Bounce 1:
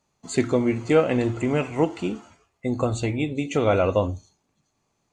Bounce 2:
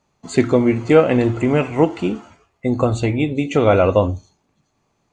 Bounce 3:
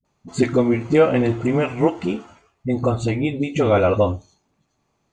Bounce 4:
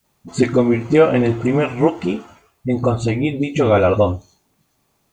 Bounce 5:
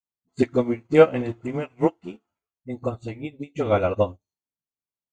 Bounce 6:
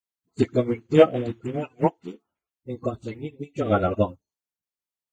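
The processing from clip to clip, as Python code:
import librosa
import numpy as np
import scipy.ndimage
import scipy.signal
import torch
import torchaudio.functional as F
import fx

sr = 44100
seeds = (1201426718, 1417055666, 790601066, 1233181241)

y1 = fx.high_shelf(x, sr, hz=5700.0, db=-10.0)
y1 = y1 * 10.0 ** (6.5 / 20.0)
y2 = fx.dispersion(y1, sr, late='highs', ms=49.0, hz=320.0)
y2 = y2 * 10.0 ** (-2.5 / 20.0)
y3 = fx.quant_dither(y2, sr, seeds[0], bits=12, dither='triangular')
y3 = y3 * 10.0 ** (2.5 / 20.0)
y4 = fx.upward_expand(y3, sr, threshold_db=-33.0, expansion=2.5)
y5 = fx.spec_quant(y4, sr, step_db=30)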